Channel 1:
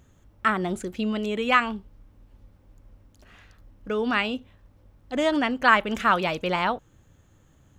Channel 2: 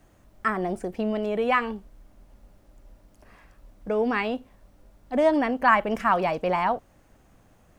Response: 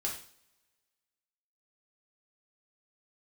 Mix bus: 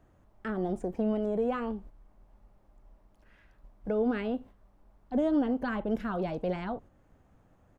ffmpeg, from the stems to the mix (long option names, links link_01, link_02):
-filter_complex "[0:a]equalizer=frequency=980:width=0.69:gain=9,acrossover=split=450|3000[link_01][link_02][link_03];[link_02]acompressor=threshold=-22dB:ratio=1.5[link_04];[link_01][link_04][link_03]amix=inputs=3:normalize=0,volume=-12dB[link_05];[1:a]acrossover=split=480[link_06][link_07];[link_07]acompressor=threshold=-39dB:ratio=2[link_08];[link_06][link_08]amix=inputs=2:normalize=0,agate=range=-7dB:threshold=-46dB:ratio=16:detection=peak,volume=-1,adelay=0.4,volume=1.5dB[link_09];[link_05][link_09]amix=inputs=2:normalize=0,highshelf=frequency=2300:gain=-12"